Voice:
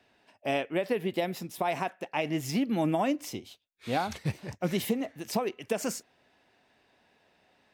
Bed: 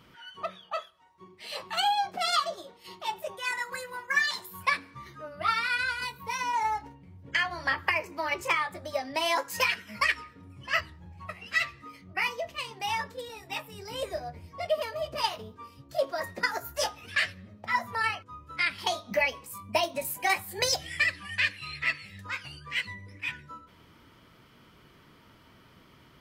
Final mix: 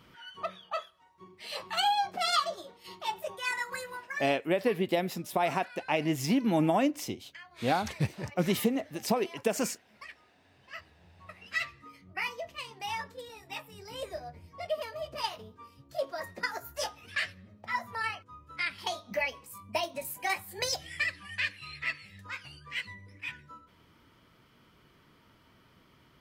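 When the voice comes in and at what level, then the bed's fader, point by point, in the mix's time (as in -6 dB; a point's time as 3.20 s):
3.75 s, +1.5 dB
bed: 3.92 s -1 dB
4.41 s -22 dB
10.43 s -22 dB
11.55 s -5 dB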